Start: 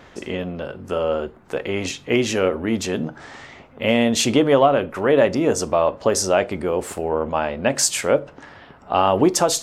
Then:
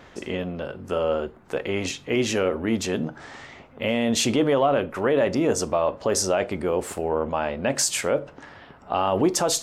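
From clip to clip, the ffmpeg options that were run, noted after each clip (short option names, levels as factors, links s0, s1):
-af "alimiter=limit=0.335:level=0:latency=1:release=20,volume=0.794"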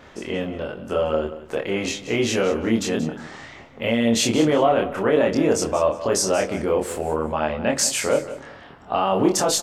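-filter_complex "[0:a]asplit=2[s0][s1];[s1]adelay=26,volume=0.794[s2];[s0][s2]amix=inputs=2:normalize=0,aecho=1:1:181|362:0.2|0.0419"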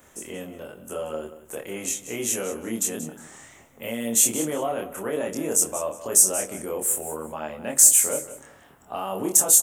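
-filter_complex "[0:a]acrossover=split=120[s0][s1];[s0]acompressor=threshold=0.00447:ratio=6[s2];[s1]aexciter=amount=12.3:drive=7.9:freq=7000[s3];[s2][s3]amix=inputs=2:normalize=0,volume=0.335"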